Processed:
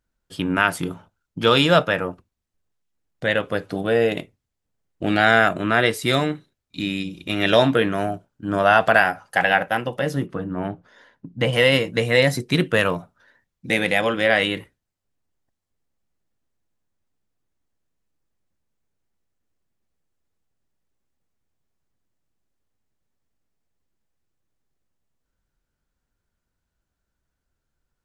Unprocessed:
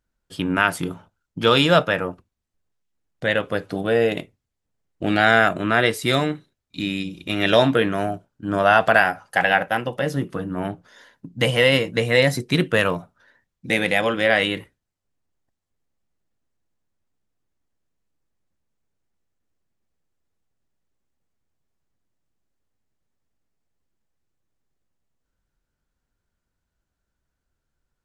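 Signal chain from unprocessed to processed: 10.26–11.53 LPF 2200 Hz 6 dB/oct

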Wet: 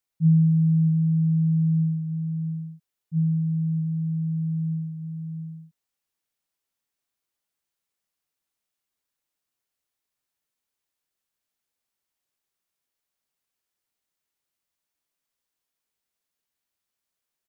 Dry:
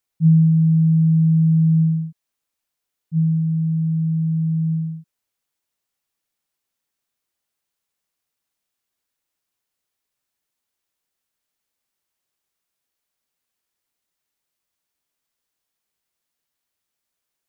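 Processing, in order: echo 0.673 s -8.5 dB; gain -4.5 dB

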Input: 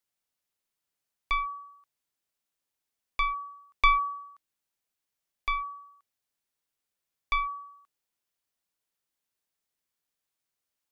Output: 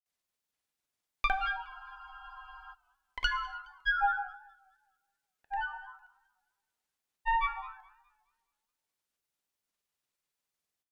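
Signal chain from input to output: grains 0.1 s, grains 20/s, pitch spread up and down by 7 st; non-linear reverb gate 0.33 s falling, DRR 9.5 dB; spectral freeze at 1.68, 1.04 s; warbling echo 0.209 s, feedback 37%, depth 129 cents, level -23 dB

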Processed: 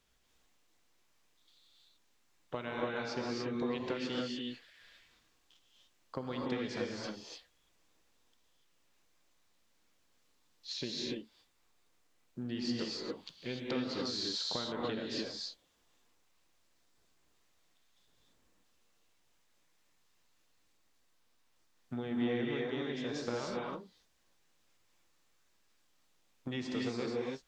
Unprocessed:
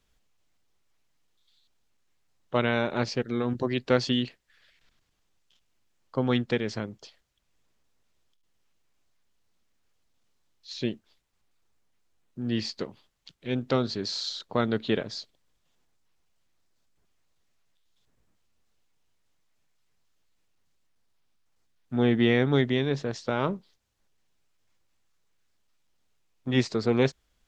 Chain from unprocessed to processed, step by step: low shelf 200 Hz -7 dB; compressor 8:1, threshold -37 dBFS, peak gain reduction 19 dB; non-linear reverb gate 0.32 s rising, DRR -2.5 dB

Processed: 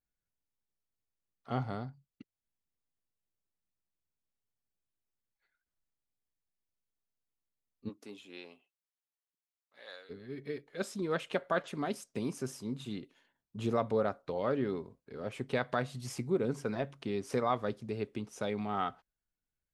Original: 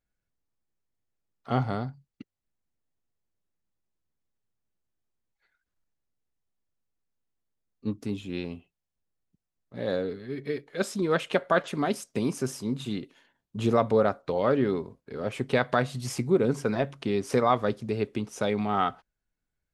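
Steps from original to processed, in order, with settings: 7.88–10.09 HPF 380 Hz -> 1500 Hz 12 dB/oct; gain -8 dB

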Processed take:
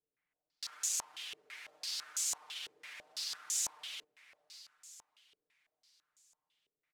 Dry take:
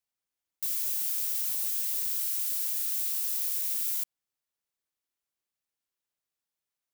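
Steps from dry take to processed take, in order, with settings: comb 6.6 ms, depth 78%; limiter -21 dBFS, peak gain reduction 5.5 dB; on a send: diffused feedback echo 0.574 s, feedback 46%, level -14 dB; on the sum: stepped low-pass 6 Hz 430–6900 Hz

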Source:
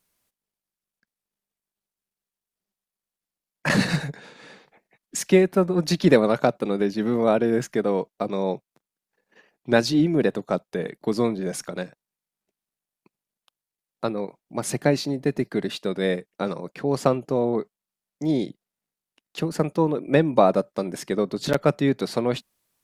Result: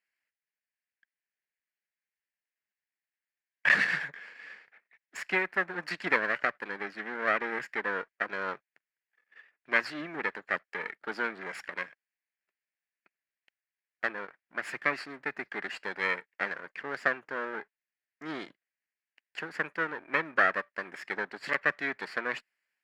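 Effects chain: minimum comb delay 0.41 ms; AGC gain up to 5 dB; band-pass 1700 Hz, Q 3.5; gain +3.5 dB

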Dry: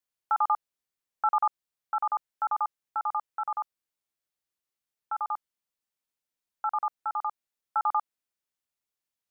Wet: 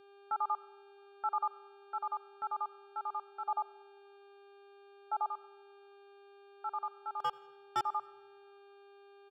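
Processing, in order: gate with hold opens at -35 dBFS; 3.48–5.27 bell 700 Hz +14.5 dB 0.65 oct; harmonic-percussive split percussive -5 dB; tilt -1.5 dB/oct; 7.2–7.81 sample leveller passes 3; buzz 400 Hz, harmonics 11, -52 dBFS -7 dB/oct; notch comb 1000 Hz; feedback echo 85 ms, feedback 43%, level -23.5 dB; reverb RT60 1.6 s, pre-delay 55 ms, DRR 23 dB; gain -7 dB

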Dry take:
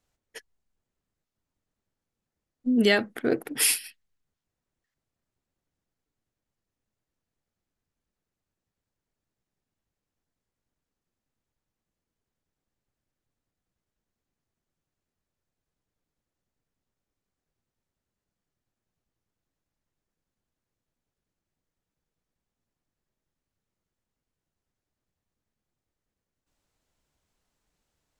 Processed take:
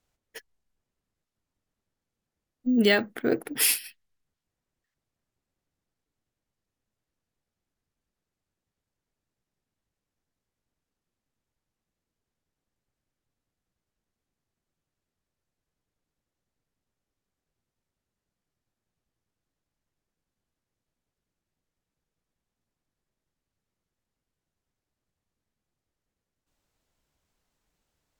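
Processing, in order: careless resampling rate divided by 2×, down none, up hold

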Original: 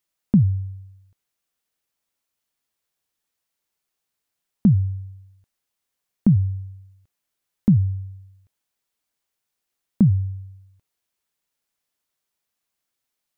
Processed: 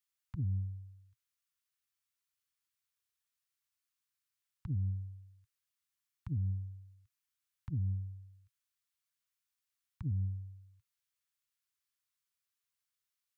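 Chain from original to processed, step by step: elliptic band-stop 120–880 Hz; band shelf 520 Hz -15.5 dB; limiter -21.5 dBFS, peak gain reduction 9 dB; HPF 49 Hz 12 dB/oct; Doppler distortion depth 0.5 ms; gain -7.5 dB

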